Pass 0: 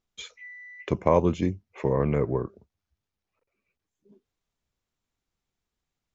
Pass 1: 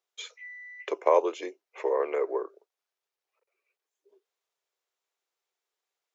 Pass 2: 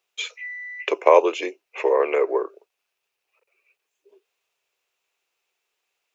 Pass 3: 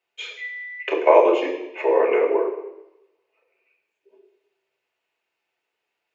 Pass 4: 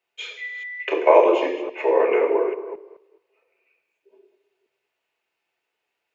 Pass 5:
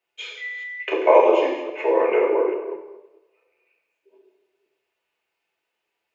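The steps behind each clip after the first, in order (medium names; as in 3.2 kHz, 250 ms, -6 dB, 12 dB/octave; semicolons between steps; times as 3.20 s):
steep high-pass 380 Hz 48 dB/octave
peaking EQ 2.6 kHz +10.5 dB 0.38 oct; trim +7.5 dB
reverberation RT60 0.90 s, pre-delay 3 ms, DRR -3 dB; trim -11 dB
chunks repeated in reverse 212 ms, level -13.5 dB
plate-style reverb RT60 0.83 s, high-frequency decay 0.85×, DRR 3.5 dB; trim -1.5 dB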